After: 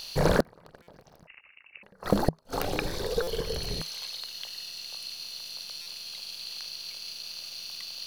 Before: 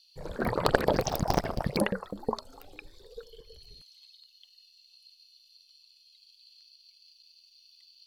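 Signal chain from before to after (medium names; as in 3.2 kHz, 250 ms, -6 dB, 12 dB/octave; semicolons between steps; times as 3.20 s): spectral levelling over time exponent 0.6; inverted gate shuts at -15 dBFS, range -39 dB; peaking EQ 160 Hz +6 dB 0.22 oct; 1.27–1.83 s: frequency inversion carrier 2.8 kHz; buffer glitch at 0.82/3.22/5.81 s, samples 256, times 8; trim +8.5 dB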